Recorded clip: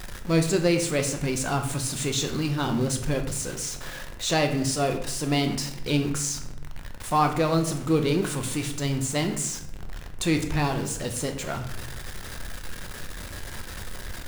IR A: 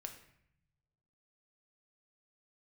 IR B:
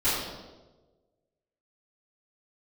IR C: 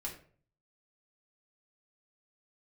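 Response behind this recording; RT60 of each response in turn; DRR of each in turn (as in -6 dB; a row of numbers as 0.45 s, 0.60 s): A; 0.70 s, 1.3 s, 0.50 s; 4.5 dB, -16.5 dB, -3.0 dB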